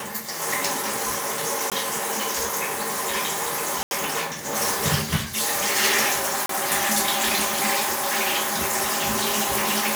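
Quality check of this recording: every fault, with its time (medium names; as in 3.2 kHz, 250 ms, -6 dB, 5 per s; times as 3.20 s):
1.70–1.72 s: dropout 17 ms
3.83–3.91 s: dropout 81 ms
6.46–6.49 s: dropout 33 ms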